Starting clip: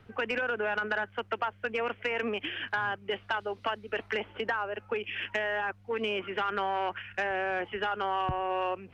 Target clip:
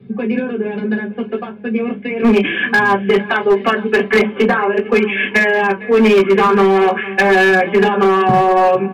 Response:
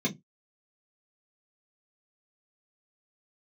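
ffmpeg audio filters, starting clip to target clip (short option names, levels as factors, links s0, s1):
-filter_complex "[0:a]asetnsamples=n=441:p=0,asendcmd='2.22 equalizer g 10.5',equalizer=f=1400:w=0.41:g=-6.5,aecho=1:1:458|916|1374|1832:0.112|0.055|0.0269|0.0132[s0];[1:a]atrim=start_sample=2205[s1];[s0][s1]afir=irnorm=-1:irlink=0,aresample=11025,aresample=44100,highshelf=f=3000:g=-5.5,aecho=1:1:5.2:0.54,flanger=delay=9.4:depth=4.2:regen=-63:speed=0.38:shape=sinusoidal,asoftclip=type=hard:threshold=0.188,volume=2.51"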